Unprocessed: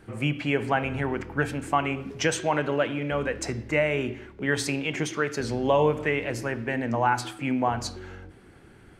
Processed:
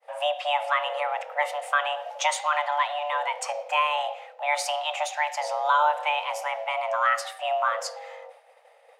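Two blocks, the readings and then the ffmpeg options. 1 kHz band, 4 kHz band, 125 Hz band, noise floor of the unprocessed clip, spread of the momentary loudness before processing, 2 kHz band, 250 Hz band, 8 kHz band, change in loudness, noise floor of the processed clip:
+5.5 dB, +4.5 dB, below −40 dB, −52 dBFS, 7 LU, +1.0 dB, below −40 dB, +0.5 dB, +0.5 dB, −56 dBFS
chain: -af "afreqshift=440,agate=range=-33dB:threshold=-46dB:ratio=3:detection=peak"

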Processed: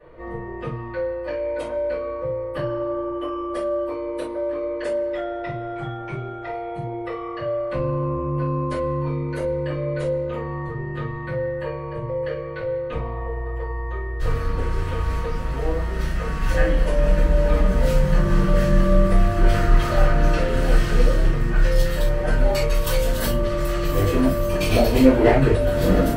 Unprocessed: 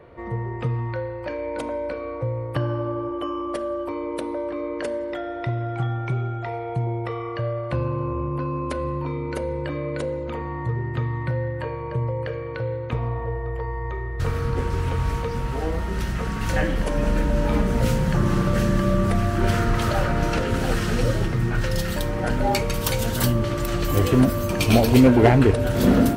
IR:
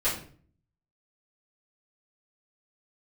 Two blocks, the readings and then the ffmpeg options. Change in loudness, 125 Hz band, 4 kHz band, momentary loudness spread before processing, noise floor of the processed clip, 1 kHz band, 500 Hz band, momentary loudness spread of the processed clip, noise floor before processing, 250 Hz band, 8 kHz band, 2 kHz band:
+0.5 dB, −1.5 dB, −1.5 dB, 10 LU, −31 dBFS, −0.5 dB, +2.5 dB, 10 LU, −31 dBFS, −1.5 dB, −3.0 dB, +0.5 dB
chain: -filter_complex "[1:a]atrim=start_sample=2205,atrim=end_sample=3528[link_01];[0:a][link_01]afir=irnorm=-1:irlink=0,volume=-10dB"

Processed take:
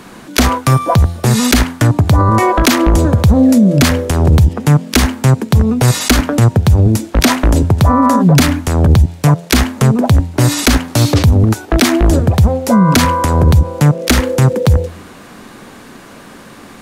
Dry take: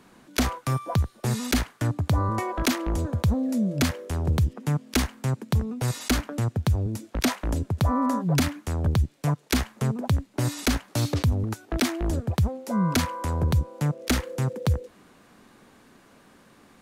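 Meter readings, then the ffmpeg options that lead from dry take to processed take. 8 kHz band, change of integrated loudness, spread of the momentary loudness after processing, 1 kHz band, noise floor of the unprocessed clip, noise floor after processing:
+14.5 dB, +15.0 dB, 4 LU, +15.5 dB, −56 dBFS, −36 dBFS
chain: -af "bandreject=frequency=85.26:width_type=h:width=4,bandreject=frequency=170.52:width_type=h:width=4,bandreject=frequency=255.78:width_type=h:width=4,bandreject=frequency=341.04:width_type=h:width=4,bandreject=frequency=426.3:width_type=h:width=4,bandreject=frequency=511.56:width_type=h:width=4,bandreject=frequency=596.82:width_type=h:width=4,bandreject=frequency=682.08:width_type=h:width=4,bandreject=frequency=767.34:width_type=h:width=4,bandreject=frequency=852.6:width_type=h:width=4,bandreject=frequency=937.86:width_type=h:width=4,alimiter=level_in=20dB:limit=-1dB:release=50:level=0:latency=1,volume=-1dB"

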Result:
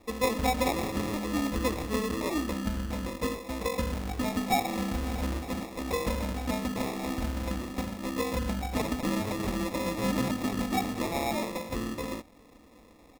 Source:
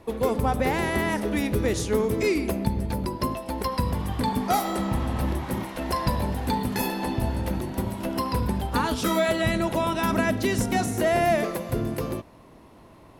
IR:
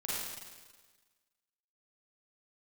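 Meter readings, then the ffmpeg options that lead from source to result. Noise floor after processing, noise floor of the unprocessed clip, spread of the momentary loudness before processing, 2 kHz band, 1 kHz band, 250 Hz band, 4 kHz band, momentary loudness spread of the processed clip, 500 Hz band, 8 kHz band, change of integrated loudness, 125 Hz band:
−56 dBFS, −50 dBFS, 6 LU, −6.0 dB, −6.0 dB, −4.0 dB, −3.0 dB, 6 LU, −7.0 dB, −3.5 dB, −5.5 dB, −7.5 dB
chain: -af "aecho=1:1:3.8:0.87,acrusher=samples=29:mix=1:aa=0.000001,volume=-7.5dB"

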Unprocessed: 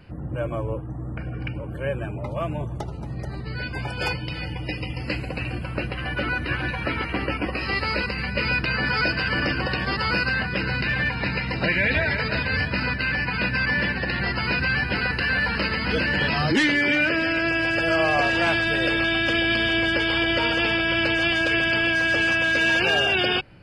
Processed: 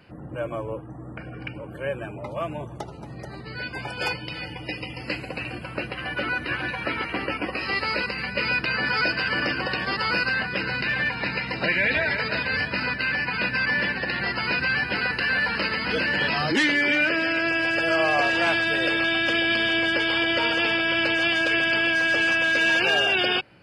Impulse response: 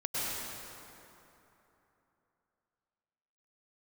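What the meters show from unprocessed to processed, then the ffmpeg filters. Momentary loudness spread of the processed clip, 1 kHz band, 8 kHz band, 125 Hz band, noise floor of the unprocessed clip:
14 LU, −0.5 dB, can't be measured, −8.0 dB, −33 dBFS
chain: -af "highpass=frequency=280:poles=1"

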